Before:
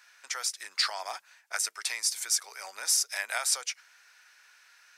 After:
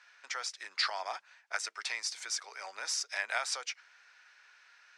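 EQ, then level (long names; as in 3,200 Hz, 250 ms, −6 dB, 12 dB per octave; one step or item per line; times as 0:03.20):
high-pass filter 160 Hz
high-frequency loss of the air 120 metres
0.0 dB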